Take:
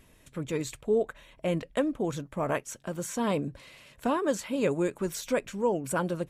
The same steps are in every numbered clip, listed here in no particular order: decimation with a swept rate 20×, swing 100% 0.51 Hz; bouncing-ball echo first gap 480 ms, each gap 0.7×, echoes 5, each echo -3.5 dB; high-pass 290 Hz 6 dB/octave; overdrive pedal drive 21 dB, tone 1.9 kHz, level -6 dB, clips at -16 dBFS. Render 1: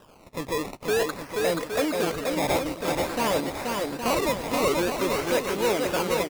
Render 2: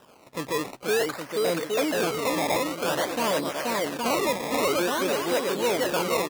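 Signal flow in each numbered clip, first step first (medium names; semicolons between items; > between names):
overdrive pedal > high-pass > decimation with a swept rate > bouncing-ball echo; bouncing-ball echo > overdrive pedal > decimation with a swept rate > high-pass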